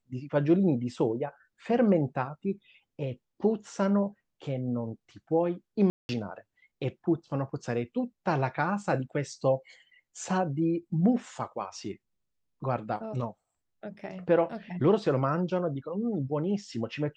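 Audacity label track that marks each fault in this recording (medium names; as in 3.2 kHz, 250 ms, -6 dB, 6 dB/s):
5.900000	6.090000	dropout 191 ms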